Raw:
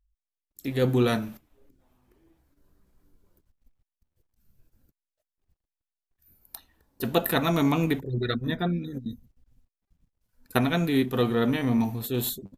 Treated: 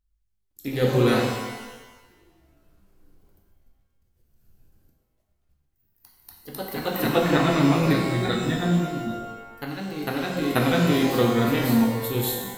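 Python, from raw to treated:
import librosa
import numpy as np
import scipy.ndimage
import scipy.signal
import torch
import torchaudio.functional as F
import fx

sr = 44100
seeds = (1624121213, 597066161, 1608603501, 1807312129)

y = fx.echo_pitch(x, sr, ms=108, semitones=1, count=2, db_per_echo=-6.0)
y = fx.lowpass(y, sr, hz=3400.0, slope=12, at=(7.1, 7.76))
y = fx.rev_shimmer(y, sr, seeds[0], rt60_s=1.1, semitones=12, shimmer_db=-8, drr_db=0.5)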